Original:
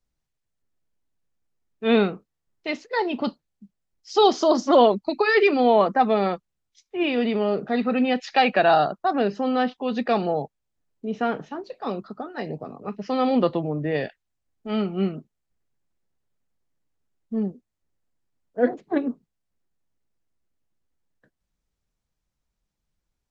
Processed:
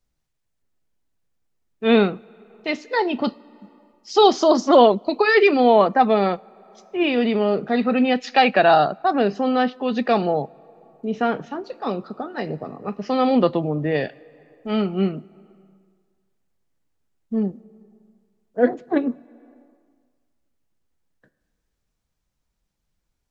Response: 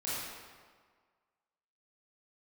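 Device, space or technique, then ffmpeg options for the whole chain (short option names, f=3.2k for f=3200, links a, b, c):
compressed reverb return: -filter_complex "[0:a]asplit=2[a][b];[1:a]atrim=start_sample=2205[c];[b][c]afir=irnorm=-1:irlink=0,acompressor=threshold=-30dB:ratio=5,volume=-17dB[d];[a][d]amix=inputs=2:normalize=0,volume=3dB"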